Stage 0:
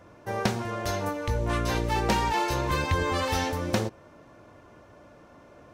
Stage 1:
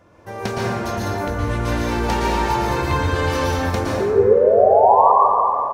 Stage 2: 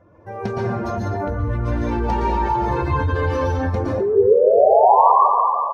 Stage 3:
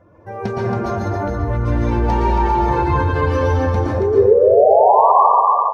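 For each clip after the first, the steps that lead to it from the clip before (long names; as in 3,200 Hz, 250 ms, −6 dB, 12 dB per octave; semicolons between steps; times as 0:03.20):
sound drawn into the spectrogram rise, 0:04.00–0:05.12, 380–1,200 Hz −19 dBFS; slap from a distant wall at 180 metres, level −22 dB; dense smooth reverb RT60 2.8 s, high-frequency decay 0.3×, pre-delay 105 ms, DRR −6 dB; level −1 dB
expanding power law on the bin magnitudes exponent 1.6
on a send: repeating echo 275 ms, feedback 21%, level −6 dB; on the sum: boost into a limiter +3 dB; level −1 dB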